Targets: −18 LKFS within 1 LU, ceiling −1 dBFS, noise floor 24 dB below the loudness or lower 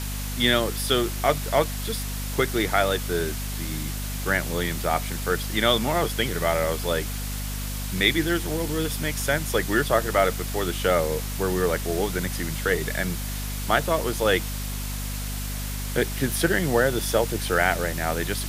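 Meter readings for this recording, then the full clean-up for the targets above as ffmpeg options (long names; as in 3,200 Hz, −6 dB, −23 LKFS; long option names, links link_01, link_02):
mains hum 50 Hz; hum harmonics up to 250 Hz; level of the hum −29 dBFS; background noise floor −30 dBFS; target noise floor −49 dBFS; integrated loudness −25.0 LKFS; sample peak −4.5 dBFS; target loudness −18.0 LKFS
→ -af "bandreject=frequency=50:width_type=h:width=4,bandreject=frequency=100:width_type=h:width=4,bandreject=frequency=150:width_type=h:width=4,bandreject=frequency=200:width_type=h:width=4,bandreject=frequency=250:width_type=h:width=4"
-af "afftdn=noise_reduction=19:noise_floor=-30"
-af "volume=7dB,alimiter=limit=-1dB:level=0:latency=1"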